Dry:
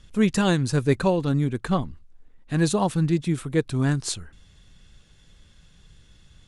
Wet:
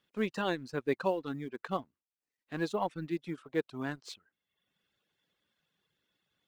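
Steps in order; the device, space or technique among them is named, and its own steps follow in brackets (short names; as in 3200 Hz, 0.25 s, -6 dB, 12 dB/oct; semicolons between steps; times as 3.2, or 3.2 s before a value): phone line with mismatched companding (BPF 300–3500 Hz; G.711 law mismatch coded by A); reverb removal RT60 0.75 s; gain -6.5 dB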